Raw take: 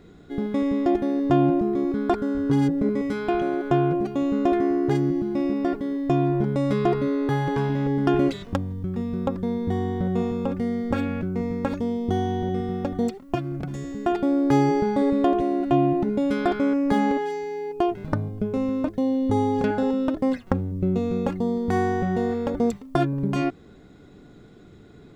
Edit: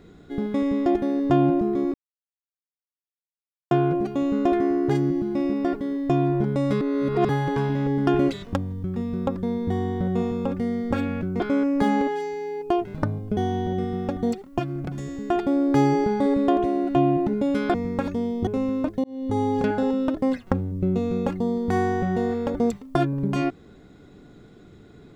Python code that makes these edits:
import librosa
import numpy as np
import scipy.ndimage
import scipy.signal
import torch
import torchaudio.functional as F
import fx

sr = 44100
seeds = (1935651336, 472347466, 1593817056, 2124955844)

y = fx.edit(x, sr, fx.silence(start_s=1.94, length_s=1.77),
    fx.reverse_span(start_s=6.81, length_s=0.48),
    fx.swap(start_s=11.4, length_s=0.73, other_s=16.5, other_length_s=1.97),
    fx.fade_in_span(start_s=19.04, length_s=0.57, curve='qsin'), tone=tone)